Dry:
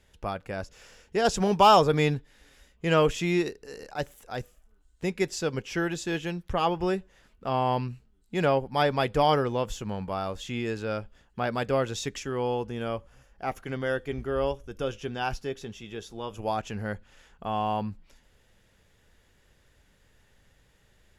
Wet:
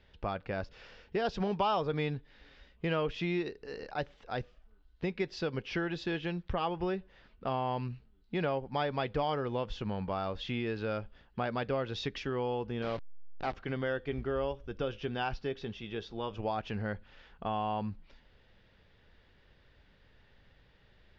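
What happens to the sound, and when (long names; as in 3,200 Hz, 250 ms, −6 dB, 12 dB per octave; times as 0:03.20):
0:12.82–0:13.54: hold until the input has moved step −33.5 dBFS
whole clip: Butterworth low-pass 4,700 Hz 36 dB per octave; downward compressor 3 to 1, threshold −31 dBFS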